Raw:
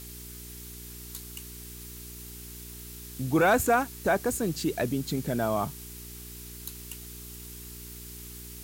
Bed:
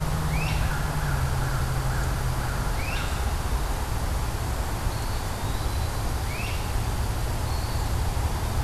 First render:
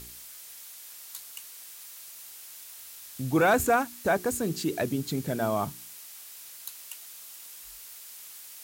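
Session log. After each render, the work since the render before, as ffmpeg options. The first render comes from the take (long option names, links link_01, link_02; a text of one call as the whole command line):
ffmpeg -i in.wav -af "bandreject=frequency=60:width_type=h:width=4,bandreject=frequency=120:width_type=h:width=4,bandreject=frequency=180:width_type=h:width=4,bandreject=frequency=240:width_type=h:width=4,bandreject=frequency=300:width_type=h:width=4,bandreject=frequency=360:width_type=h:width=4,bandreject=frequency=420:width_type=h:width=4" out.wav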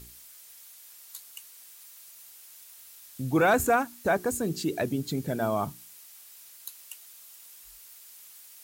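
ffmpeg -i in.wav -af "afftdn=noise_reduction=6:noise_floor=-46" out.wav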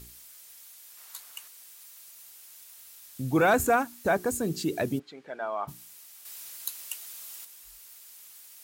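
ffmpeg -i in.wav -filter_complex "[0:a]asettb=1/sr,asplit=3[link_01][link_02][link_03];[link_01]atrim=end=0.974[link_04];[link_02]atrim=start=0.97:end=1.48,asetpts=PTS-STARTPTS,afade=type=in:duration=0.004:curve=qsin,afade=type=out:start_time=0.506:duration=0.004:curve=qsin,equalizer=frequency=1100:width_type=o:width=2.4:gain=8.5[link_05];[link_03]atrim=start=1.476[link_06];[link_04][link_05]acrossfade=duration=0.004:curve1=hsin:curve2=qsin[link_07];[link_07][link_06]acrossfade=duration=0.004:curve1=qsin:curve2=hsin,asplit=3[link_08][link_09][link_10];[link_08]afade=type=out:start_time=4.98:duration=0.02[link_11];[link_09]highpass=760,lowpass=2200,afade=type=in:start_time=4.98:duration=0.02,afade=type=out:start_time=5.67:duration=0.02[link_12];[link_10]afade=type=in:start_time=5.67:duration=0.02[link_13];[link_11][link_12][link_13]amix=inputs=3:normalize=0,asettb=1/sr,asplit=3[link_14][link_15][link_16];[link_14]atrim=end=6.254[link_17];[link_15]atrim=start=6.25:end=7.45,asetpts=PTS-STARTPTS,afade=type=in:duration=0.004:curve=qsin,afade=type=out:start_time=1.196:duration=0.004:curve=qsin,acontrast=76[link_18];[link_16]atrim=start=7.446[link_19];[link_17][link_18]acrossfade=duration=0.004:curve1=hsin:curve2=qsin[link_20];[link_20][link_19]acrossfade=duration=0.004:curve1=qsin:curve2=hsin" out.wav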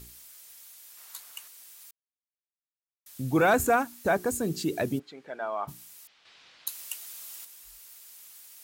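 ffmpeg -i in.wav -filter_complex "[0:a]asettb=1/sr,asplit=3[link_01][link_02][link_03];[link_01]atrim=end=6.074[link_04];[link_02]atrim=start=6.07:end=6.67,asetpts=PTS-STARTPTS,afade=type=in:duration=0.004:curve=qsin,afade=type=out:start_time=0.596:duration=0.004:curve=qsin,lowpass=frequency=4000:width=0.5412,lowpass=frequency=4000:width=1.3066[link_05];[link_03]atrim=start=6.666[link_06];[link_04][link_05]acrossfade=duration=0.004:curve1=hsin:curve2=qsin[link_07];[link_07][link_06]acrossfade=duration=0.004:curve1=qsin:curve2=hsin,asplit=3[link_08][link_09][link_10];[link_08]atrim=end=1.91,asetpts=PTS-STARTPTS,afade=type=out:start_time=1.906:duration=0.004:curve=hsin[link_11];[link_09]atrim=start=1.91:end=3.06,asetpts=PTS-STARTPTS,volume=0[link_12];[link_10]atrim=start=3.06,asetpts=PTS-STARTPTS,afade=type=in:duration=0.004:curve=hsin[link_13];[link_11][link_12][link_13]concat=n=3:v=0:a=1" out.wav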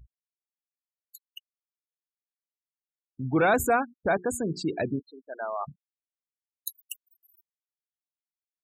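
ffmpeg -i in.wav -af "afftfilt=real='re*gte(hypot(re,im),0.0224)':imag='im*gte(hypot(re,im),0.0224)':win_size=1024:overlap=0.75" out.wav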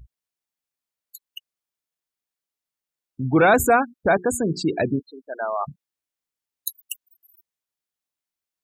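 ffmpeg -i in.wav -af "volume=6.5dB" out.wav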